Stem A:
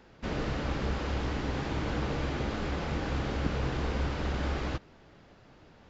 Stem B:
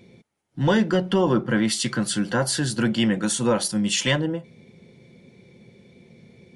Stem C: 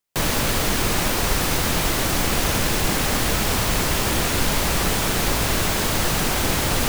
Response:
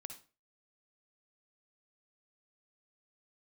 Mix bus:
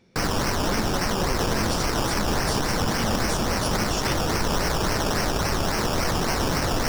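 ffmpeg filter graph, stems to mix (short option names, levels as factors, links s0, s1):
-filter_complex "[0:a]volume=0.282[s0];[1:a]volume=0.335[s1];[2:a]acrusher=samples=17:mix=1:aa=0.000001:lfo=1:lforange=10.2:lforate=3.6,volume=0.891[s2];[s0][s1][s2]amix=inputs=3:normalize=0,equalizer=f=5500:w=4:g=10.5,alimiter=limit=0.188:level=0:latency=1:release=53"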